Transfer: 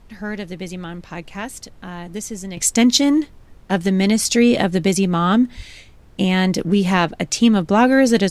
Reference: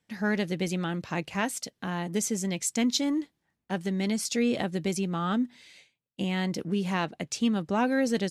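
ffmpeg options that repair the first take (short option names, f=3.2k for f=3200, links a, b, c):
-filter_complex "[0:a]asplit=3[a][b][c];[a]afade=t=out:st=5.56:d=0.02[d];[b]highpass=f=140:w=0.5412,highpass=f=140:w=1.3066,afade=t=in:st=5.56:d=0.02,afade=t=out:st=5.68:d=0.02[e];[c]afade=t=in:st=5.68:d=0.02[f];[d][e][f]amix=inputs=3:normalize=0,agate=range=-21dB:threshold=-35dB,asetnsamples=n=441:p=0,asendcmd='2.57 volume volume -12dB',volume=0dB"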